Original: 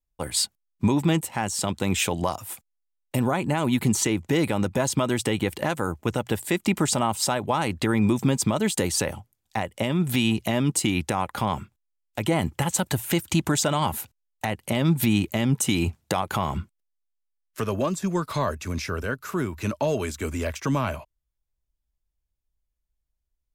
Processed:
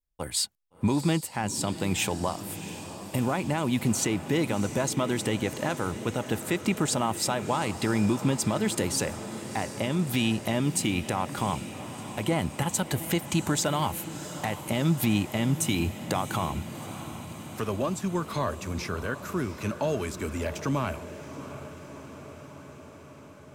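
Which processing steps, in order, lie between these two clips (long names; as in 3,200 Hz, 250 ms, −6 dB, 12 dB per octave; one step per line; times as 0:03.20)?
feedback delay with all-pass diffusion 699 ms, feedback 70%, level −12.5 dB
level −3.5 dB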